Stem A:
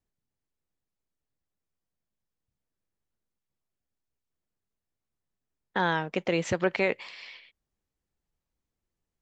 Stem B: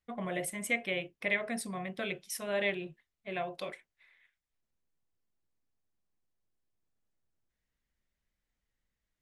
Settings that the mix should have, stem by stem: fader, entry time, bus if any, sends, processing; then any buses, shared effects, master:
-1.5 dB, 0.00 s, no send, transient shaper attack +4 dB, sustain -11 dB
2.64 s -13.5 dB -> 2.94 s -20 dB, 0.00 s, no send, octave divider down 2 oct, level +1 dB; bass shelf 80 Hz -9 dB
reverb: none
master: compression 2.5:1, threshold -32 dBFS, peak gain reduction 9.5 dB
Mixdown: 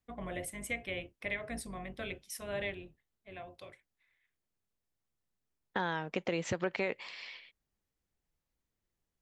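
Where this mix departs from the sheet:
stem A: missing transient shaper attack +4 dB, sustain -11 dB; stem B -13.5 dB -> -4.5 dB

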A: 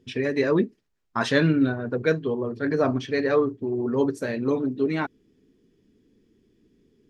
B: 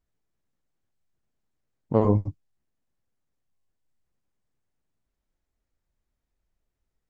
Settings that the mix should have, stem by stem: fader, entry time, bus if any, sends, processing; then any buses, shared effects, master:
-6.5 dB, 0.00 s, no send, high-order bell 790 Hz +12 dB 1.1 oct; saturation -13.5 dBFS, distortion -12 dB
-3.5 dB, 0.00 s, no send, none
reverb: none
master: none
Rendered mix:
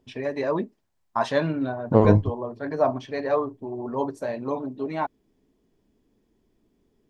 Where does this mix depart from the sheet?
stem A: missing saturation -13.5 dBFS, distortion -12 dB; stem B -3.5 dB -> +4.0 dB

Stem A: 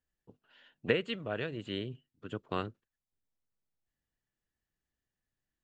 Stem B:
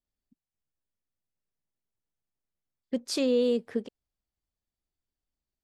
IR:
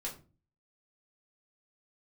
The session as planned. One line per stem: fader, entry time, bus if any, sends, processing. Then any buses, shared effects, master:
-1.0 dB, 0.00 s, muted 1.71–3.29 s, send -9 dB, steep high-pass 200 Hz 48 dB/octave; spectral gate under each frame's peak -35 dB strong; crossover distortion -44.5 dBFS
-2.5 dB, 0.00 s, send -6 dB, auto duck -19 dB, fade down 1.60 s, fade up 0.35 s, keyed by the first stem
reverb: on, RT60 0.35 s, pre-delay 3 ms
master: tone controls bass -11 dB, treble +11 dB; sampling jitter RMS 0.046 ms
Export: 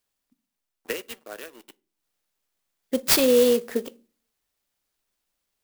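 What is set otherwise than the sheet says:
stem B -2.5 dB -> +6.5 dB; reverb return -6.0 dB

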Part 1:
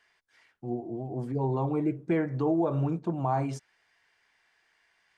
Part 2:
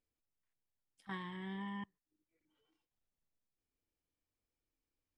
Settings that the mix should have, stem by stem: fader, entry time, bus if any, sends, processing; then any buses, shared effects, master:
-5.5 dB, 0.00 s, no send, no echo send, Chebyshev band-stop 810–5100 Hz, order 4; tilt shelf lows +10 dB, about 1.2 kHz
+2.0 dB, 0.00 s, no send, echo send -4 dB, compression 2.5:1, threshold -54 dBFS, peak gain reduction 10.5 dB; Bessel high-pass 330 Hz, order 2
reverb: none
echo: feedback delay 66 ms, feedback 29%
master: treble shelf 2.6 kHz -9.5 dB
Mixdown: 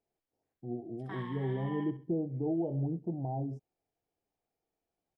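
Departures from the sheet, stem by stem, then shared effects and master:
stem 1 -5.5 dB -> -13.5 dB; stem 2: missing compression 2.5:1, threshold -54 dBFS, peak gain reduction 10.5 dB

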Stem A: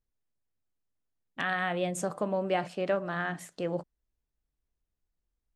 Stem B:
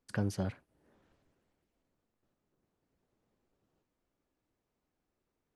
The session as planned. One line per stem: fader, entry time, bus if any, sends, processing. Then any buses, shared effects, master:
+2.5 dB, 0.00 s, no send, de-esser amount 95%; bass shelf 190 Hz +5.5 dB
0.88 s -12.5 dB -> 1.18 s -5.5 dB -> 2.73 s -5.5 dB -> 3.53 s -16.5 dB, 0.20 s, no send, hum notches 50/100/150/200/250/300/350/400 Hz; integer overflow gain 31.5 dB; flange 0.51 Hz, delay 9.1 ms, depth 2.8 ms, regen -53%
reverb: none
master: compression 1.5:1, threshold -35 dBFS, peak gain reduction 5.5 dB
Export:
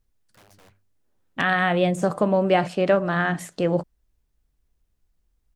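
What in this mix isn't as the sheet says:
stem A +2.5 dB -> +9.0 dB; master: missing compression 1.5:1, threshold -35 dBFS, peak gain reduction 5.5 dB

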